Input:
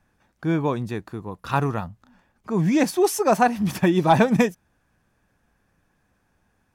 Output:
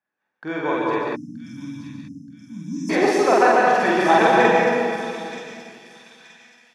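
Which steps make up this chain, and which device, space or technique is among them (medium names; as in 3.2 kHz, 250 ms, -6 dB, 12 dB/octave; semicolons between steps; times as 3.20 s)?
gate -50 dBFS, range -17 dB; station announcement (band-pass 330–4500 Hz; peaking EQ 1.8 kHz +5 dB 0.55 oct; loudspeakers at several distances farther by 16 m 0 dB, 49 m -5 dB; reverberation RT60 2.4 s, pre-delay 113 ms, DRR -2 dB); spectral selection erased 1.16–2.90 s, 310–5100 Hz; dynamic bell 200 Hz, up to -4 dB, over -30 dBFS, Q 0.97; feedback echo behind a high-pass 926 ms, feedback 38%, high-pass 4.1 kHz, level -5 dB; trim -1.5 dB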